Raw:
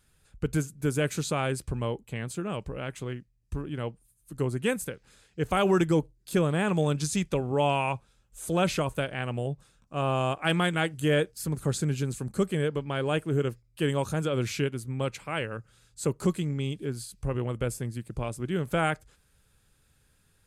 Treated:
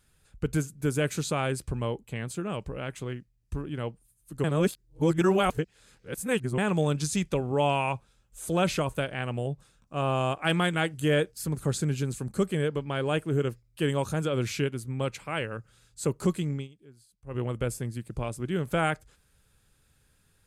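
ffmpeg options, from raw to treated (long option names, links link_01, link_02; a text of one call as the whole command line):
ffmpeg -i in.wav -filter_complex "[0:a]asplit=5[link_01][link_02][link_03][link_04][link_05];[link_01]atrim=end=4.442[link_06];[link_02]atrim=start=4.438:end=6.582,asetpts=PTS-STARTPTS,areverse[link_07];[link_03]atrim=start=6.578:end=16.68,asetpts=PTS-STARTPTS,afade=type=out:start_time=9.972:duration=0.13:silence=0.0944061[link_08];[link_04]atrim=start=16.68:end=17.26,asetpts=PTS-STARTPTS,volume=-20.5dB[link_09];[link_05]atrim=start=17.26,asetpts=PTS-STARTPTS,afade=type=in:duration=0.13:silence=0.0944061[link_10];[link_06][link_07]acrossfade=duration=0.004:curve1=hsin:curve2=hsin[link_11];[link_08][link_09][link_10]concat=n=3:v=0:a=1[link_12];[link_11][link_12]acrossfade=duration=0.004:curve1=hsin:curve2=hsin" out.wav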